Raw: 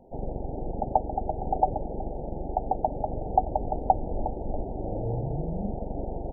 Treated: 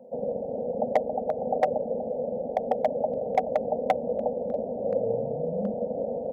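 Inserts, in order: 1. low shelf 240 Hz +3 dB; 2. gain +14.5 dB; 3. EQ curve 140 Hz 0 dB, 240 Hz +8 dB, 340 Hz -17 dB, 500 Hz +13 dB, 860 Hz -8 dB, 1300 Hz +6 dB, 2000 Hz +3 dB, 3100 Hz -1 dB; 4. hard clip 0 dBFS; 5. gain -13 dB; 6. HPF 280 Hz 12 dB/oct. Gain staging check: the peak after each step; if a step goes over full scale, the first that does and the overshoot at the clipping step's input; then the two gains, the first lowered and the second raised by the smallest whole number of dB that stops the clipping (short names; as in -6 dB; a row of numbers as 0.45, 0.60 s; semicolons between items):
-5.5, +9.0, +9.5, 0.0, -13.0, -9.0 dBFS; step 2, 9.5 dB; step 2 +4.5 dB, step 5 -3 dB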